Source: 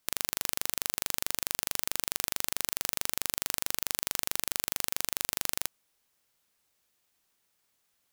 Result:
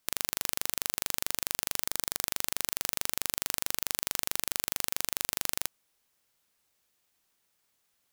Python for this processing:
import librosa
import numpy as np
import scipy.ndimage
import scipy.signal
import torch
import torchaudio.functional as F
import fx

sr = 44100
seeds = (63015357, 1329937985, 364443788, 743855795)

y = fx.peak_eq(x, sr, hz=2700.0, db=-11.5, octaves=0.21, at=(1.86, 2.26))